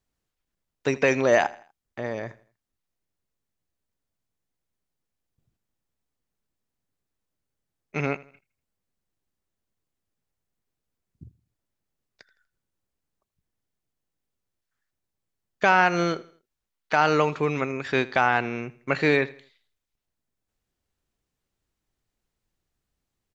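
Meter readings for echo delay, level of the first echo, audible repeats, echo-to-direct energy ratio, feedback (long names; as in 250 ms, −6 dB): 81 ms, −20.0 dB, 2, −19.5 dB, 38%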